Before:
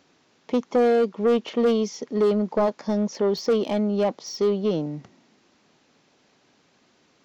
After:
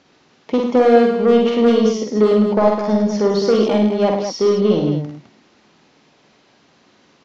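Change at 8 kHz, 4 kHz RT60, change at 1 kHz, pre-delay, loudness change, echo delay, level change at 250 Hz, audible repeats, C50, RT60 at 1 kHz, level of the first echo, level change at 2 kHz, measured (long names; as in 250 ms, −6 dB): can't be measured, no reverb audible, +8.5 dB, no reverb audible, +7.5 dB, 47 ms, +8.5 dB, 3, no reverb audible, no reverb audible, −4.0 dB, +8.5 dB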